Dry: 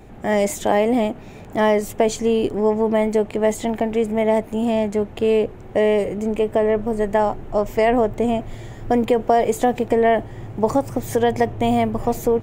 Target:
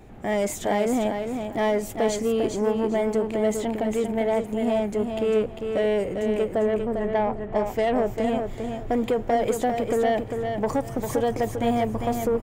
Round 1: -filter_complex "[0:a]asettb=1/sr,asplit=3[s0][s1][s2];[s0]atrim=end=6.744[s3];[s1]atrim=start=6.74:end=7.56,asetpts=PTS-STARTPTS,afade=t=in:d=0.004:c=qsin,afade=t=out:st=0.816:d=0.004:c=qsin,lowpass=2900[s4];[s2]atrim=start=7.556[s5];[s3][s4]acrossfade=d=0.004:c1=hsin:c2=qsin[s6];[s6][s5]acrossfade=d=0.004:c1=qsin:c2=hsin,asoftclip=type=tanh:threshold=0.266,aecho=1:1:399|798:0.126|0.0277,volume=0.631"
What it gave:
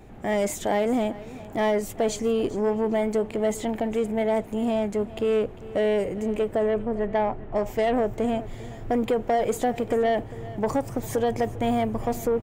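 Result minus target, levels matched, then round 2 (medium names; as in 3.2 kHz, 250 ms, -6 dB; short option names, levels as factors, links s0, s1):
echo-to-direct -12 dB
-filter_complex "[0:a]asettb=1/sr,asplit=3[s0][s1][s2];[s0]atrim=end=6.744[s3];[s1]atrim=start=6.74:end=7.56,asetpts=PTS-STARTPTS,afade=t=in:d=0.004:c=qsin,afade=t=out:st=0.816:d=0.004:c=qsin,lowpass=2900[s4];[s2]atrim=start=7.556[s5];[s3][s4]acrossfade=d=0.004:c1=hsin:c2=qsin[s6];[s6][s5]acrossfade=d=0.004:c1=qsin:c2=hsin,asoftclip=type=tanh:threshold=0.266,aecho=1:1:399|798|1197:0.501|0.11|0.0243,volume=0.631"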